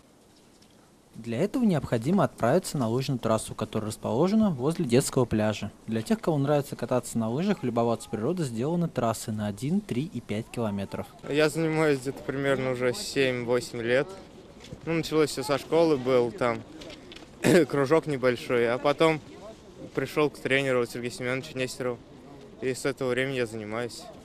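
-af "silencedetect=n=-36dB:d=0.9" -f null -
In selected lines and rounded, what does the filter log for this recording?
silence_start: 0.00
silence_end: 1.16 | silence_duration: 1.16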